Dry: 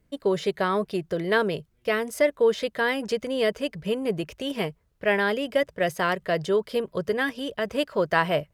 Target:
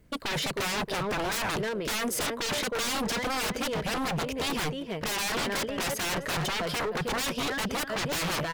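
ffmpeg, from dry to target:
-filter_complex "[0:a]asettb=1/sr,asplit=3[s0][s1][s2];[s0]atrim=end=1.464[s3];[s1]atrim=start=1.46:end=2.09,asetpts=PTS-STARTPTS,afade=t=in:d=0.004:c=qsin,afade=t=out:st=0.626:d=0.004:c=qsin,asuperstop=centerf=830:order=20:qfactor=5.9[s4];[s2]atrim=start=2.086[s5];[s3][s4]acrossfade=d=0.004:c1=hsin:c2=qsin[s6];[s6][s5]acrossfade=d=0.004:c1=qsin:c2=hsin,aeval=exprs='clip(val(0),-1,0.0631)':c=same,asplit=2[s7][s8];[s8]adelay=312,lowpass=f=4200:p=1,volume=0.224,asplit=2[s9][s10];[s10]adelay=312,lowpass=f=4200:p=1,volume=0.27,asplit=2[s11][s12];[s12]adelay=312,lowpass=f=4200:p=1,volume=0.27[s13];[s7][s9][s11][s13]amix=inputs=4:normalize=0,aeval=exprs='0.0266*(abs(mod(val(0)/0.0266+3,4)-2)-1)':c=same,volume=2.24"

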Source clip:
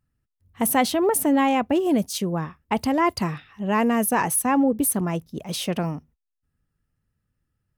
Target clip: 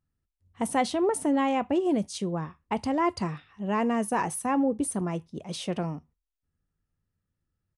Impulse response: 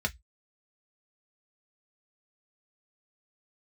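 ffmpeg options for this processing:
-filter_complex "[0:a]aresample=22050,aresample=44100,asplit=2[s0][s1];[s1]highshelf=f=5100:g=11[s2];[1:a]atrim=start_sample=2205,asetrate=24255,aresample=44100[s3];[s2][s3]afir=irnorm=-1:irlink=0,volume=0.075[s4];[s0][s4]amix=inputs=2:normalize=0,volume=0.501"

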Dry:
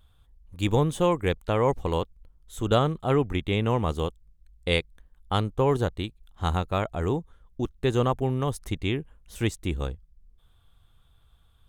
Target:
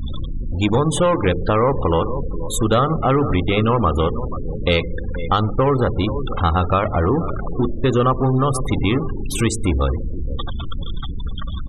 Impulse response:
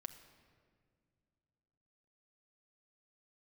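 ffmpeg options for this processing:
-filter_complex "[0:a]aeval=exprs='val(0)+0.5*0.0376*sgn(val(0))':c=same,asplit=2[s0][s1];[s1]adynamicequalizer=threshold=0.00447:dfrequency=5700:dqfactor=0.95:tfrequency=5700:tqfactor=0.95:attack=5:release=100:ratio=0.375:range=3:mode=cutabove:tftype=bell[s2];[1:a]atrim=start_sample=2205,asetrate=66150,aresample=44100[s3];[s2][s3]afir=irnorm=-1:irlink=0,volume=1.78[s4];[s0][s4]amix=inputs=2:normalize=0,acontrast=61,aecho=1:1:481|962|1443:0.158|0.0618|0.0241,afftfilt=real='re*gte(hypot(re,im),0.0794)':imag='im*gte(hypot(re,im),0.0794)':win_size=1024:overlap=0.75,equalizer=f=1200:w=5.9:g=8.5,bandreject=f=50:t=h:w=6,bandreject=f=100:t=h:w=6,bandreject=f=150:t=h:w=6,bandreject=f=200:t=h:w=6,bandreject=f=250:t=h:w=6,bandreject=f=300:t=h:w=6,bandreject=f=350:t=h:w=6,bandreject=f=400:t=h:w=6,bandreject=f=450:t=h:w=6,acompressor=threshold=0.178:ratio=2.5"

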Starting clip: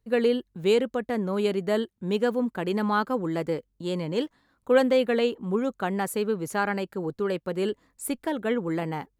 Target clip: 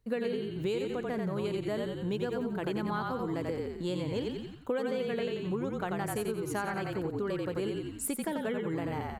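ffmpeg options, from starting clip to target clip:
-filter_complex "[0:a]asplit=6[s0][s1][s2][s3][s4][s5];[s1]adelay=88,afreqshift=-38,volume=0.708[s6];[s2]adelay=176,afreqshift=-76,volume=0.299[s7];[s3]adelay=264,afreqshift=-114,volume=0.124[s8];[s4]adelay=352,afreqshift=-152,volume=0.0525[s9];[s5]adelay=440,afreqshift=-190,volume=0.0221[s10];[s0][s6][s7][s8][s9][s10]amix=inputs=6:normalize=0,acompressor=threshold=0.0251:ratio=6,volume=1.19"

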